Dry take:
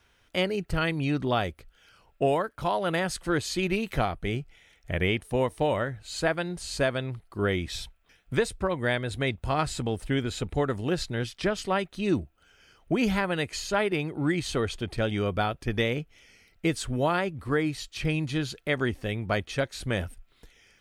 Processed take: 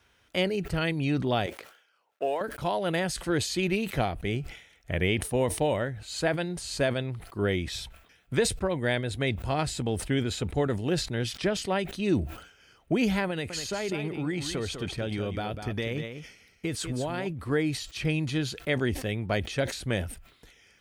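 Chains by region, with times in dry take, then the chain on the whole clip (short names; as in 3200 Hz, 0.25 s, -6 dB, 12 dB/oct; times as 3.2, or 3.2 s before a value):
1.46–2.41 G.711 law mismatch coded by A + HPF 500 Hz + high shelf 2700 Hz -8.5 dB
13.3–17.27 compressor, threshold -26 dBFS + echo 0.198 s -8.5 dB
whole clip: HPF 49 Hz 12 dB/oct; dynamic EQ 1200 Hz, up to -7 dB, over -44 dBFS, Q 2.1; sustainer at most 95 dB/s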